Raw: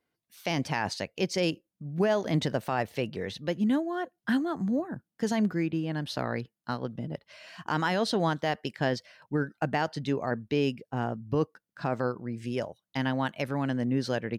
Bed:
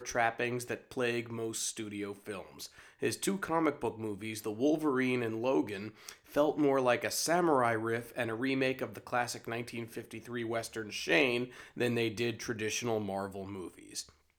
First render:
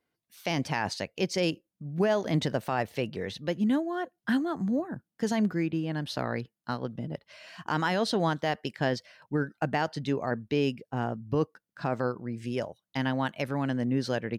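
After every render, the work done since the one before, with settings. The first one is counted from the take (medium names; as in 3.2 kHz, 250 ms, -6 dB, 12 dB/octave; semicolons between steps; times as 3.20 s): no audible change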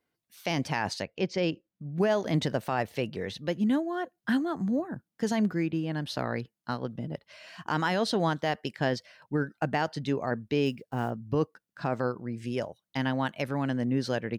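1.02–1.98 s: distance through air 150 m; 10.66–11.11 s: block-companded coder 7-bit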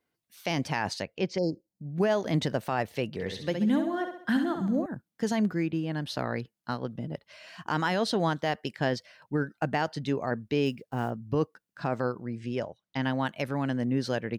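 1.38–1.91 s: brick-wall FIR band-stop 970–4000 Hz; 3.09–4.86 s: flutter echo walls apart 11.4 m, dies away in 0.58 s; 12.37–13.03 s: distance through air 75 m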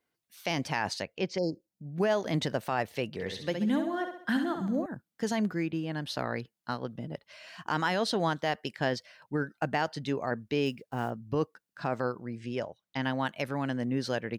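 bass shelf 410 Hz -4 dB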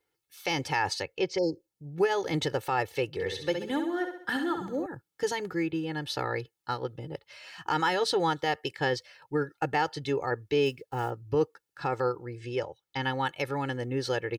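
comb 2.3 ms, depth 90%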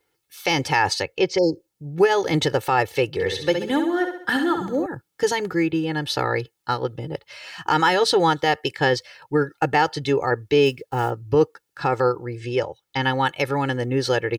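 trim +8.5 dB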